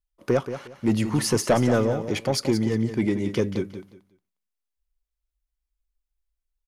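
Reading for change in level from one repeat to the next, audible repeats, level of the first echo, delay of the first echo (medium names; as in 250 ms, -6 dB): -12.5 dB, 2, -10.5 dB, 179 ms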